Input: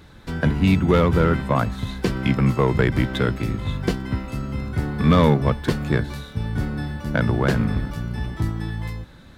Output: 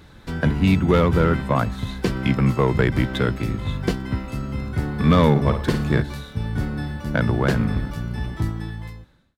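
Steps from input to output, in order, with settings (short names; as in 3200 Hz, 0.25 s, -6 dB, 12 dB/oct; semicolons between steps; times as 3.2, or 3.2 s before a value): ending faded out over 0.95 s; 5.3–6.02 flutter echo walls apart 9.5 m, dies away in 0.42 s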